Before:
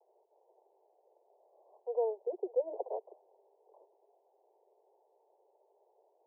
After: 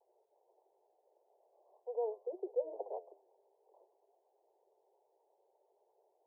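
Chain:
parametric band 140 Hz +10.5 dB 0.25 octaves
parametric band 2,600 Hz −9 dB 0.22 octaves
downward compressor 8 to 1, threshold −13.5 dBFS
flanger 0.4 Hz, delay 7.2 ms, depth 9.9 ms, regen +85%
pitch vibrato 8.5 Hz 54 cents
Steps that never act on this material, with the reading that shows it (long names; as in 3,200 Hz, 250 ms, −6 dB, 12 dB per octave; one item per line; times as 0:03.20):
parametric band 140 Hz: nothing at its input below 300 Hz
parametric band 2,600 Hz: nothing at its input above 960 Hz
downward compressor, threshold −13.5 dBFS: peak of its input −21.0 dBFS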